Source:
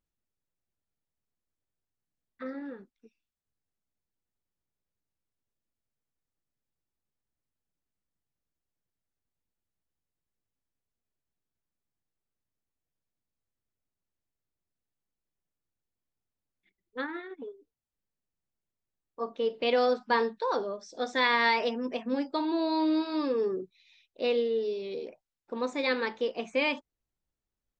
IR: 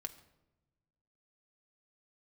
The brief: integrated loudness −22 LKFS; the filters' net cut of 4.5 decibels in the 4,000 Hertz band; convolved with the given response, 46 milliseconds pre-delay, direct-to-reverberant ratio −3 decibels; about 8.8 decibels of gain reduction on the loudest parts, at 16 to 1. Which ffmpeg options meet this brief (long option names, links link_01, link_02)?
-filter_complex "[0:a]equalizer=frequency=4000:width_type=o:gain=-5.5,acompressor=threshold=-30dB:ratio=16,asplit=2[link_01][link_02];[1:a]atrim=start_sample=2205,adelay=46[link_03];[link_02][link_03]afir=irnorm=-1:irlink=0,volume=6dB[link_04];[link_01][link_04]amix=inputs=2:normalize=0,volume=9.5dB"